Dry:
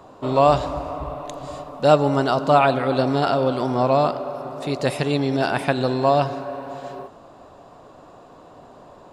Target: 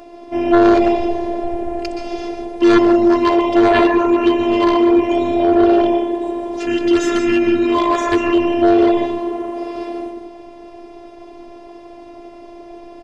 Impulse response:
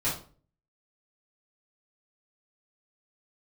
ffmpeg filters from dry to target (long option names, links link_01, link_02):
-filter_complex "[0:a]asetrate=30870,aresample=44100,equalizer=frequency=98:width_type=o:width=1.1:gain=-13,asplit=2[link_01][link_02];[1:a]atrim=start_sample=2205,adelay=118[link_03];[link_02][link_03]afir=irnorm=-1:irlink=0,volume=-13dB[link_04];[link_01][link_04]amix=inputs=2:normalize=0,afftfilt=real='hypot(re,im)*cos(PI*b)':imag='0':win_size=512:overlap=0.75,aeval=exprs='0.501*sin(PI/2*2.51*val(0)/0.501)':channel_layout=same"